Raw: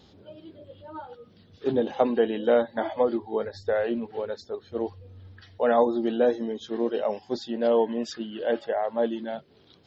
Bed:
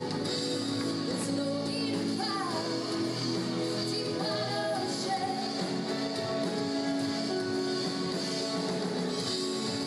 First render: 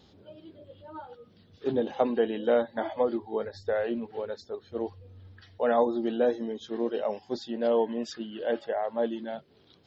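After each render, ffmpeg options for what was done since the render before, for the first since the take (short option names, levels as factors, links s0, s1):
-af "volume=0.708"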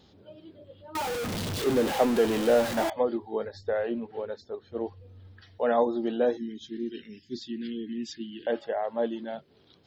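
-filter_complex "[0:a]asettb=1/sr,asplit=3[s0][s1][s2];[s0]atrim=end=0.954[s3];[s1]atrim=start=0.95:end=2.9,asetpts=PTS-STARTPTS,afade=t=in:d=0.004:c=qsin,afade=t=out:st=1.946:d=0.004:c=qsin,aeval=exprs='val(0)+0.5*0.0501*sgn(val(0))':c=same[s4];[s2]atrim=start=2.896[s5];[s3][s4]acrossfade=d=0.004:c1=hsin:c2=qsin[s6];[s6][s5]acrossfade=d=0.004:c1=qsin:c2=hsin,asettb=1/sr,asplit=3[s7][s8][s9];[s7]atrim=end=3.614[s10];[s8]atrim=start=3.61:end=4.97,asetpts=PTS-STARTPTS,afade=t=in:d=0.004:c=qsin,afade=t=out:st=1.356:d=0.004:c=qsin,lowpass=f=3700:p=1[s11];[s9]atrim=start=4.966[s12];[s10][s11]acrossfade=d=0.004:c1=hsin:c2=qsin[s13];[s13][s12]acrossfade=d=0.004:c1=qsin:c2=hsin,asettb=1/sr,asplit=3[s14][s15][s16];[s14]atrim=end=6.374[s17];[s15]atrim=start=6.37:end=8.47,asetpts=PTS-STARTPTS,afade=t=in:d=0.004:c=qsin,afade=t=out:st=2.096:d=0.004:c=qsin,asuperstop=centerf=800:order=12:qfactor=0.56[s18];[s16]atrim=start=8.466[s19];[s17][s18]acrossfade=d=0.004:c1=hsin:c2=qsin[s20];[s20][s19]acrossfade=d=0.004:c1=qsin:c2=hsin"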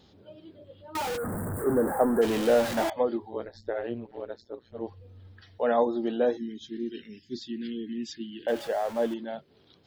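-filter_complex "[0:a]asplit=3[s0][s1][s2];[s0]afade=t=out:st=1.16:d=0.02[s3];[s1]asuperstop=centerf=3900:order=12:qfactor=0.59,afade=t=in:st=1.16:d=0.02,afade=t=out:st=2.21:d=0.02[s4];[s2]afade=t=in:st=2.21:d=0.02[s5];[s3][s4][s5]amix=inputs=3:normalize=0,asplit=3[s6][s7][s8];[s6]afade=t=out:st=3.29:d=0.02[s9];[s7]tremolo=f=120:d=0.919,afade=t=in:st=3.29:d=0.02,afade=t=out:st=4.87:d=0.02[s10];[s8]afade=t=in:st=4.87:d=0.02[s11];[s9][s10][s11]amix=inputs=3:normalize=0,asettb=1/sr,asplit=3[s12][s13][s14];[s12]atrim=end=8.484[s15];[s13]atrim=start=8.48:end=9.14,asetpts=PTS-STARTPTS,afade=t=in:d=0.004:c=qsin,afade=t=out:st=0.656:d=0.004:c=qsin,aeval=exprs='val(0)+0.5*0.0133*sgn(val(0))':c=same[s16];[s14]atrim=start=9.136[s17];[s15][s16]acrossfade=d=0.004:c1=hsin:c2=qsin[s18];[s18][s17]acrossfade=d=0.004:c1=qsin:c2=hsin"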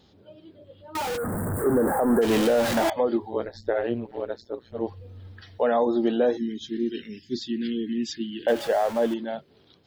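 -af "alimiter=limit=0.106:level=0:latency=1:release=92,dynaudnorm=f=540:g=5:m=2.11"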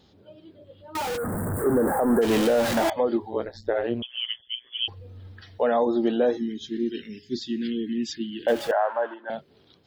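-filter_complex "[0:a]asettb=1/sr,asplit=3[s0][s1][s2];[s0]atrim=end=4.024[s3];[s1]atrim=start=4.02:end=4.88,asetpts=PTS-STARTPTS,afade=t=in:d=0.004:c=qsin,afade=t=out:st=0.856:d=0.004:c=qsin,lowpass=f=3000:t=q:w=0.5098,lowpass=f=3000:t=q:w=0.6013,lowpass=f=3000:t=q:w=0.9,lowpass=f=3000:t=q:w=2.563,afreqshift=-3500[s4];[s2]atrim=start=4.876[s5];[s3][s4]acrossfade=d=0.004:c1=hsin:c2=qsin[s6];[s6][s5]acrossfade=d=0.004:c1=qsin:c2=hsin,asettb=1/sr,asplit=3[s7][s8][s9];[s7]atrim=end=6.114[s10];[s8]atrim=start=6.11:end=7.72,asetpts=PTS-STARTPTS,afade=t=in:d=0.004:c=qsin,afade=t=out:st=1.606:d=0.004:c=qsin,bandreject=f=414.4:t=h:w=4,bandreject=f=828.8:t=h:w=4,bandreject=f=1243.2:t=h:w=4,bandreject=f=1657.6:t=h:w=4,bandreject=f=2072:t=h:w=4,bandreject=f=2486.4:t=h:w=4,bandreject=f=2900.8:t=h:w=4,bandreject=f=3315.2:t=h:w=4,bandreject=f=3729.6:t=h:w=4,bandreject=f=4144:t=h:w=4,bandreject=f=4558.4:t=h:w=4,bandreject=f=4972.8:t=h:w=4,bandreject=f=5387.2:t=h:w=4,bandreject=f=5801.6:t=h:w=4,bandreject=f=6216:t=h:w=4,bandreject=f=6630.4:t=h:w=4,bandreject=f=7044.8:t=h:w=4,bandreject=f=7459.2:t=h:w=4,bandreject=f=7873.6:t=h:w=4,bandreject=f=8288:t=h:w=4,bandreject=f=8702.4:t=h:w=4,bandreject=f=9116.8:t=h:w=4,bandreject=f=9531.2:t=h:w=4,bandreject=f=9945.6:t=h:w=4,bandreject=f=10360:t=h:w=4,bandreject=f=10774.4:t=h:w=4,bandreject=f=11188.8:t=h:w=4,bandreject=f=11603.2:t=h:w=4,bandreject=f=12017.6:t=h:w=4,bandreject=f=12432:t=h:w=4,bandreject=f=12846.4:t=h:w=4,bandreject=f=13260.8:t=h:w=4,bandreject=f=13675.2:t=h:w=4,bandreject=f=14089.6:t=h:w=4,bandreject=f=14504:t=h:w=4[s11];[s9]atrim=start=7.716[s12];[s10][s11]acrossfade=d=0.004:c1=hsin:c2=qsin[s13];[s13][s12]acrossfade=d=0.004:c1=qsin:c2=hsin,asettb=1/sr,asplit=3[s14][s15][s16];[s14]atrim=end=8.714[s17];[s15]atrim=start=8.71:end=9.3,asetpts=PTS-STARTPTS,afade=t=in:d=0.004:c=qsin,afade=t=out:st=0.586:d=0.004:c=qsin,highpass=f=460:w=0.5412,highpass=f=460:w=1.3066,equalizer=f=460:t=q:w=4:g=-7,equalizer=f=970:t=q:w=4:g=7,equalizer=f=1500:t=q:w=4:g=9,equalizer=f=2200:t=q:w=4:g=-10,lowpass=f=2300:w=0.5412,lowpass=f=2300:w=1.3066[s18];[s16]atrim=start=9.296[s19];[s17][s18]acrossfade=d=0.004:c1=hsin:c2=qsin[s20];[s20][s19]acrossfade=d=0.004:c1=qsin:c2=hsin"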